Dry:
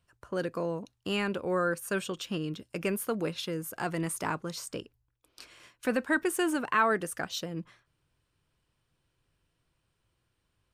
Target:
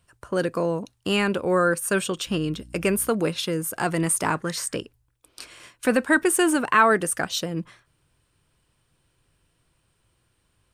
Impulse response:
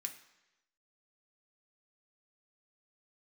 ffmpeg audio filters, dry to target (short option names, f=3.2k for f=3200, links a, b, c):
-filter_complex "[0:a]equalizer=f=9k:t=o:w=0.36:g=7,asettb=1/sr,asplit=3[a][b][c];[a]atrim=end=2.274[d];[b]atrim=start=2.27:end=3.09,asetpts=PTS-STARTPTS,afade=t=in:d=0.004:c=qsin,afade=t=out:st=0.816:d=0.004:c=qsin,aeval=exprs='val(0)+0.00224*(sin(2*PI*60*n/s)+sin(2*PI*2*60*n/s)/2+sin(2*PI*3*60*n/s)/3+sin(2*PI*4*60*n/s)/4+sin(2*PI*5*60*n/s)/5)':c=same[e];[c]atrim=start=3.086[f];[d][e]acrossfade=d=0.004:c1=hsin:c2=qsin[g];[g][f]acrossfade=d=0.004:c1=qsin:c2=hsin,asettb=1/sr,asplit=3[h][i][j];[h]atrim=end=4.354[k];[i]atrim=start=4.35:end=4.76,asetpts=PTS-STARTPTS,afade=t=in:d=0.004:c=qsin,afade=t=out:st=0.406:d=0.004:c=qsin,equalizer=f=1.8k:t=o:w=0.4:g=13.5[l];[j]atrim=start=4.756[m];[k][l]acrossfade=d=0.004:c1=hsin:c2=qsin[n];[n][m]acrossfade=d=0.004:c1=qsin:c2=hsin,volume=8dB"